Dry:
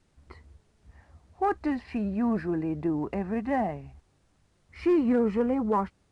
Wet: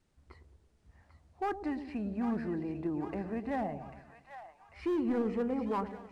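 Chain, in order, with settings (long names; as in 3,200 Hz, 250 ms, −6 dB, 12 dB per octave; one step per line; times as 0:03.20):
hard clipping −20.5 dBFS, distortion −18 dB
echo with a time of its own for lows and highs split 730 Hz, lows 110 ms, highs 794 ms, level −9 dB
level −7 dB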